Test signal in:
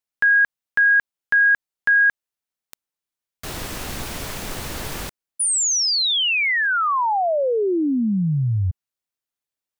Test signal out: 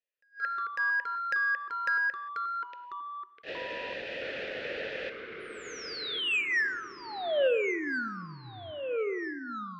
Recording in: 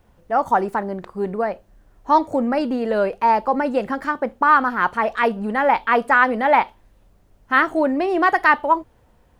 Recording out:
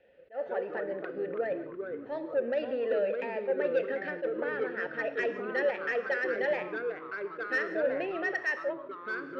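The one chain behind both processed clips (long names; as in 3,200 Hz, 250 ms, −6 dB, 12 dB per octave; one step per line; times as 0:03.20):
low-pass filter 4,600 Hz 24 dB per octave
parametric band 3,500 Hz +4 dB 2.3 octaves
downward compressor 2.5 to 1, threshold −28 dBFS
formant filter e
soft clipping −29 dBFS
reverb whose tail is shaped and stops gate 200 ms flat, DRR 11 dB
delay with pitch and tempo change per echo 133 ms, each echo −3 semitones, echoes 3, each echo −6 dB
level that may rise only so fast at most 300 dB per second
level +7.5 dB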